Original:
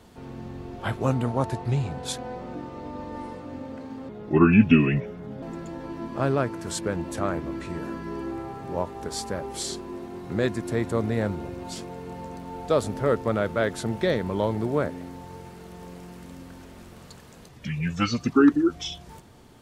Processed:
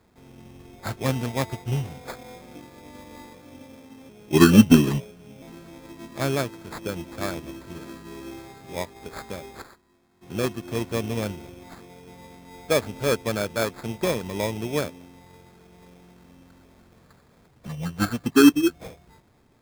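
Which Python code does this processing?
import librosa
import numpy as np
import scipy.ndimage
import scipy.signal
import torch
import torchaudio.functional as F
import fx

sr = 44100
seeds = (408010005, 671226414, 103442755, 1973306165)

y = fx.tone_stack(x, sr, knobs='5-5-5', at=(9.61, 10.21), fade=0.02)
y = fx.sample_hold(y, sr, seeds[0], rate_hz=2900.0, jitter_pct=0)
y = fx.upward_expand(y, sr, threshold_db=-38.0, expansion=1.5)
y = F.gain(torch.from_numpy(y), 4.5).numpy()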